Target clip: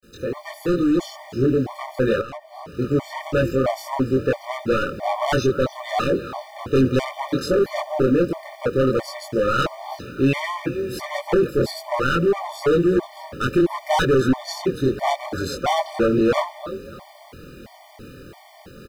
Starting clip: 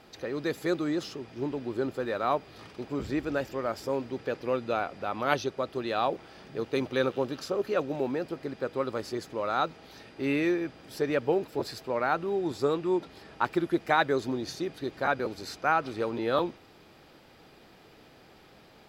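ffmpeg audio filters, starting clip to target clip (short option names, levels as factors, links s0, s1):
-filter_complex "[0:a]equalizer=f=3900:t=o:w=2.3:g=-3.5,asplit=2[s0][s1];[s1]adelay=23,volume=0.794[s2];[s0][s2]amix=inputs=2:normalize=0,asplit=4[s3][s4][s5][s6];[s4]adelay=291,afreqshift=36,volume=0.141[s7];[s5]adelay=582,afreqshift=72,volume=0.0468[s8];[s6]adelay=873,afreqshift=108,volume=0.0153[s9];[s3][s7][s8][s9]amix=inputs=4:normalize=0,volume=21.1,asoftclip=hard,volume=0.0473,dynaudnorm=f=270:g=7:m=1.78,agate=range=0.0224:threshold=0.00398:ratio=3:detection=peak,acrusher=bits=9:mix=0:aa=0.000001,lowshelf=f=170:g=8,asettb=1/sr,asplit=3[s10][s11][s12];[s10]atrim=end=2.214[s13];[s11]atrim=start=2.21:end=2.79,asetpts=PTS-STARTPTS,afade=t=in:d=0.004:c=qsin,afade=t=out:st=0.576:d=0.004:c=qsin,acompressor=threshold=0.0126:ratio=8[s14];[s12]atrim=start=2.786[s15];[s13][s14]acrossfade=d=0.004:c1=hsin:c2=qsin[s16];[s16][s15]acrossfade=d=0.004:c1=qsin:c2=hsin,afftfilt=real='re*gt(sin(2*PI*1.5*pts/sr)*(1-2*mod(floor(b*sr/1024/600),2)),0)':imag='im*gt(sin(2*PI*1.5*pts/sr)*(1-2*mod(floor(b*sr/1024/600),2)),0)':win_size=1024:overlap=0.75,volume=2.24"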